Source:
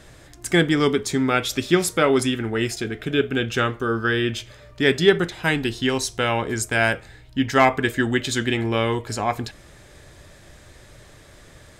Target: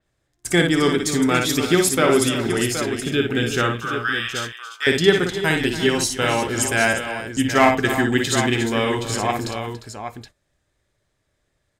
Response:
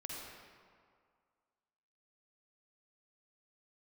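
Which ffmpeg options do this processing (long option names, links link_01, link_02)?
-filter_complex "[0:a]agate=range=-26dB:threshold=-35dB:ratio=16:detection=peak,asettb=1/sr,asplit=3[link_01][link_02][link_03];[link_01]atrim=end=3.754[link_04];[link_02]atrim=start=3.75:end=4.87,asetpts=PTS-STARTPTS,afade=type=in:duration=0.004:curve=qsin,afade=type=out:start_time=1.116:duration=0.004:curve=qsin,highpass=frequency=920:width=0.5412,highpass=frequency=920:width=1.3066[link_05];[link_03]atrim=start=4.866[link_06];[link_04][link_05]acrossfade=duration=0.004:curve1=hsin:curve2=qsin[link_07];[link_07][link_06]acrossfade=duration=0.004:curve1=qsin:curve2=hsin,asplit=2[link_08][link_09];[link_09]aecho=0:1:57|284|352|772:0.562|0.2|0.237|0.376[link_10];[link_08][link_10]amix=inputs=2:normalize=0,adynamicequalizer=threshold=0.0126:dfrequency=5000:dqfactor=0.7:tfrequency=5000:tqfactor=0.7:attack=5:release=100:ratio=0.375:range=2.5:mode=boostabove:tftype=highshelf"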